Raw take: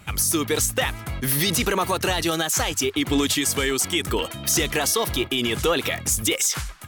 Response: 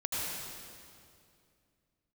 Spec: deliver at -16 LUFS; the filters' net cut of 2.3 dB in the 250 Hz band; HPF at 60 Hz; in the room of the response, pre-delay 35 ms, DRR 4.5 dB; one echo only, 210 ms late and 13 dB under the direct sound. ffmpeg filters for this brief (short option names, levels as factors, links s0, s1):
-filter_complex "[0:a]highpass=60,equalizer=f=250:t=o:g=-3,aecho=1:1:210:0.224,asplit=2[s0][s1];[1:a]atrim=start_sample=2205,adelay=35[s2];[s1][s2]afir=irnorm=-1:irlink=0,volume=0.299[s3];[s0][s3]amix=inputs=2:normalize=0,volume=1.78"